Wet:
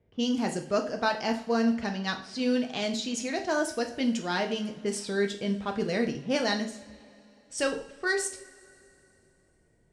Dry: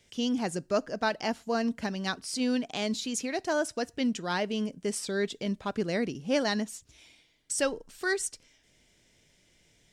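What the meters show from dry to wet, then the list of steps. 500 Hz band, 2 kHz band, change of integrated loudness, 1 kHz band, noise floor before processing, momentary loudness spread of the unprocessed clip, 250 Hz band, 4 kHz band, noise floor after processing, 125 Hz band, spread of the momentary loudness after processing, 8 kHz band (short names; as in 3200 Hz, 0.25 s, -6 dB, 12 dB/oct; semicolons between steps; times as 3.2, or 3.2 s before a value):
+1.5 dB, +2.0 dB, +1.5 dB, +2.0 dB, -66 dBFS, 4 LU, +1.5 dB, +1.5 dB, -66 dBFS, +1.0 dB, 5 LU, -1.5 dB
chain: low-pass opened by the level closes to 790 Hz, open at -26 dBFS; two-slope reverb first 0.44 s, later 3.2 s, from -22 dB, DRR 3.5 dB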